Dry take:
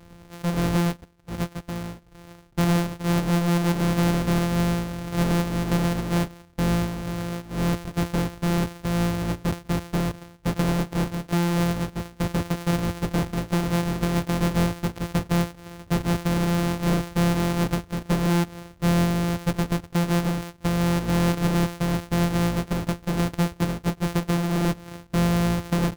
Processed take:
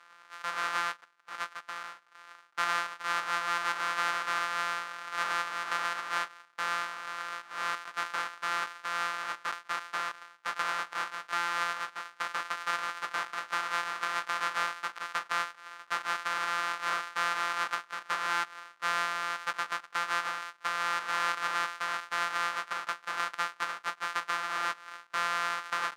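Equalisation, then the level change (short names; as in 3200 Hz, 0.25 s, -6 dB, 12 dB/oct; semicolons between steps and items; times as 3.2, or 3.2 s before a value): resonant high-pass 1300 Hz, resonance Q 3; air absorption 53 m; -2.5 dB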